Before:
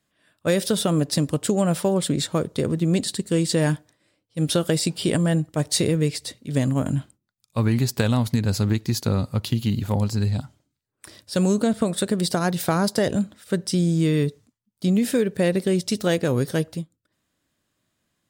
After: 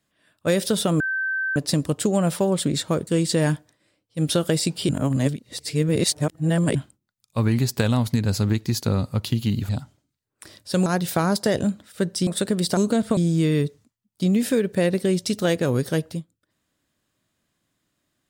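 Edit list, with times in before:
1 add tone 1550 Hz -22 dBFS 0.56 s
2.51–3.27 cut
5.09–6.95 reverse
9.89–10.31 cut
11.48–11.88 swap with 12.38–13.79

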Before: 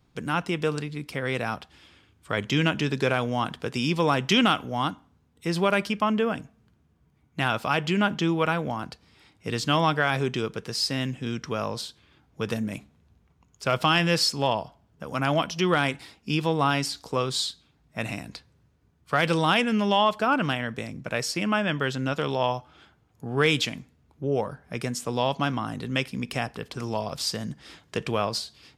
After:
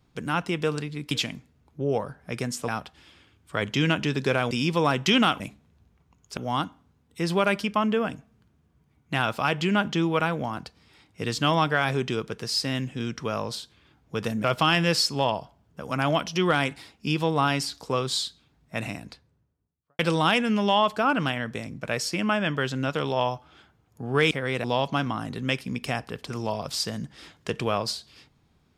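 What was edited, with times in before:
1.11–1.44 swap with 23.54–25.11
3.27–3.74 cut
12.7–13.67 move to 4.63
17.98–19.22 studio fade out

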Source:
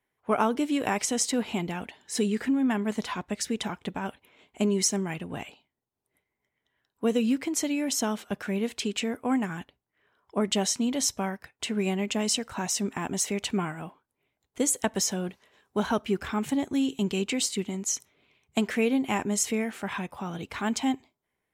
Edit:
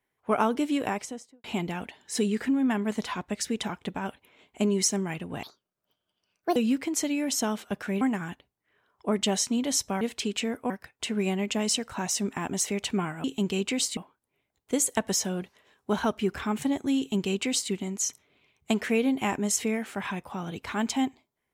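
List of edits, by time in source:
0.7–1.44 studio fade out
5.43–7.16 speed 153%
8.61–9.3 move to 11.3
16.85–17.58 copy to 13.84

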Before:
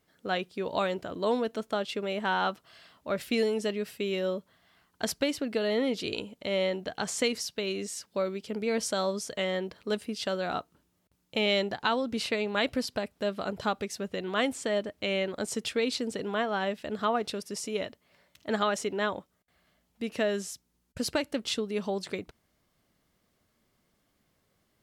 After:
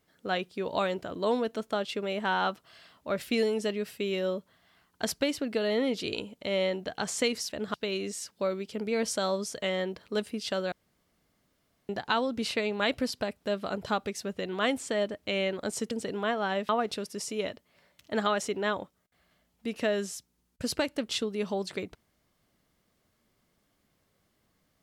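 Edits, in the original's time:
10.47–11.64 room tone
15.66–16.02 cut
16.8–17.05 move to 7.49

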